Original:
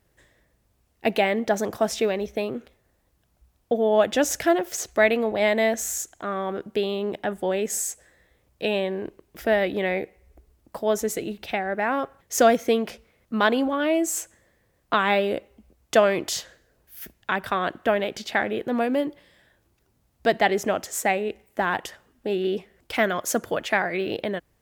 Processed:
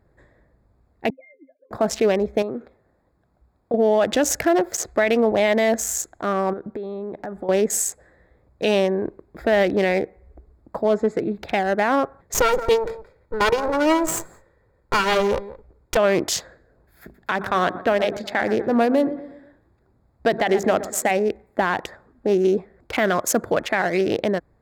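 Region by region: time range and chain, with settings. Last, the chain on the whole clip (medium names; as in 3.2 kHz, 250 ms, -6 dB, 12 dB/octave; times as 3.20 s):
1.10–1.71 s: formants replaced by sine waves + vowel filter i + pitch-class resonator C, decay 0.11 s
2.42–3.74 s: bass shelf 76 Hz -12 dB + compression 2:1, threshold -34 dBFS
6.53–7.49 s: compression, threshold -34 dBFS + treble shelf 5.2 kHz -4.5 dB + tape noise reduction on one side only decoder only
10.84–11.35 s: high-pass 90 Hz + distance through air 88 m + loudspeaker Doppler distortion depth 0.12 ms
12.34–15.97 s: comb filter that takes the minimum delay 2.1 ms + delay 172 ms -15.5 dB
17.02–21.11 s: hum notches 50/100/150/200/250/300/350/400 Hz + feedback delay 121 ms, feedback 45%, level -15.5 dB
whole clip: local Wiener filter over 15 samples; peak limiter -16.5 dBFS; trim +7 dB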